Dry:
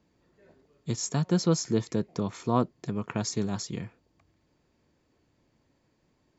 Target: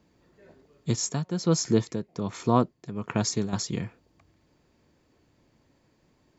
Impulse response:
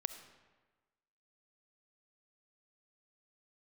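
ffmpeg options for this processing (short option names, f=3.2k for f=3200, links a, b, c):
-filter_complex "[0:a]asettb=1/sr,asplit=3[a][b][c];[a]atrim=end=0.924[d];[b]atrim=start=0.92:end=3.53,asetpts=PTS-STARTPTS,afade=t=in:d=0.004:c=qsin,afade=t=out:st=2.606:d=0.004:c=qsin,tremolo=f=1.3:d=0.7[e];[c]atrim=start=3.526[f];[d][e]acrossfade=d=0.004:c1=hsin:c2=qsin[g];[g][f]acrossfade=d=0.004:c1=qsin:c2=hsin,volume=4.5dB"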